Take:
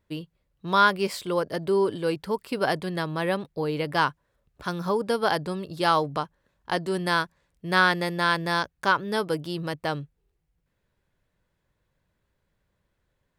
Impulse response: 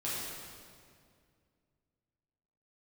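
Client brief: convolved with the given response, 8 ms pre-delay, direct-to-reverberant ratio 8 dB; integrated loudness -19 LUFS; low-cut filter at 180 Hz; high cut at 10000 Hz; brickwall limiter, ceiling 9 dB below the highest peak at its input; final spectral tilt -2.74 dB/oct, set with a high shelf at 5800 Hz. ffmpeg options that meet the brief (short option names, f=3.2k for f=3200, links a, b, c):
-filter_complex "[0:a]highpass=180,lowpass=10k,highshelf=f=5.8k:g=6.5,alimiter=limit=-13dB:level=0:latency=1,asplit=2[a][b];[1:a]atrim=start_sample=2205,adelay=8[c];[b][c]afir=irnorm=-1:irlink=0,volume=-13dB[d];[a][d]amix=inputs=2:normalize=0,volume=9dB"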